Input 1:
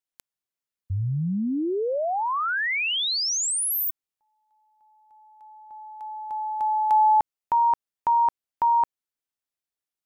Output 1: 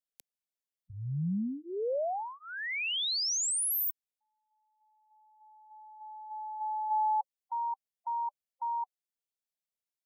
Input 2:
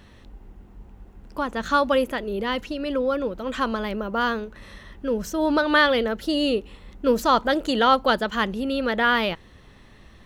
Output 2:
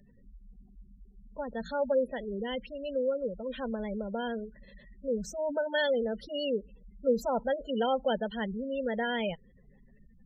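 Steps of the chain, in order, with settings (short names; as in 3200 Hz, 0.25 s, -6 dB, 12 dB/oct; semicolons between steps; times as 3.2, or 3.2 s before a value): spectral gate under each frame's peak -15 dB strong; fixed phaser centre 320 Hz, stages 6; gain -5 dB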